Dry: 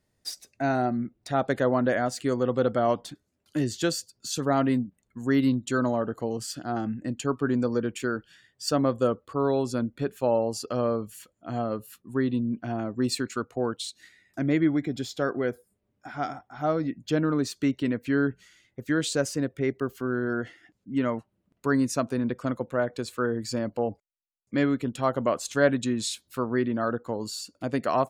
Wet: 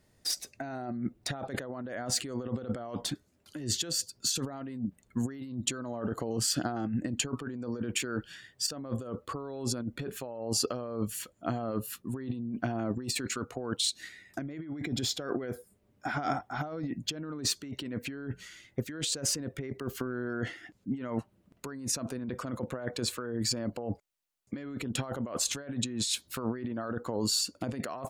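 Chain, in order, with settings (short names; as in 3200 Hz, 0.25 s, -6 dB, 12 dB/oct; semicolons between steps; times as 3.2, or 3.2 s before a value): negative-ratio compressor -35 dBFS, ratio -1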